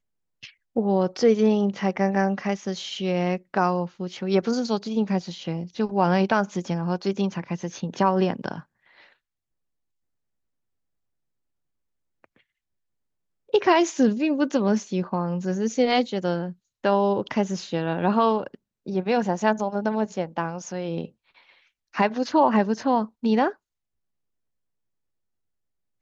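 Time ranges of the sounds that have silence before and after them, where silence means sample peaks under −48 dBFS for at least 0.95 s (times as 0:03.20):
0:12.24–0:12.36
0:13.49–0:23.55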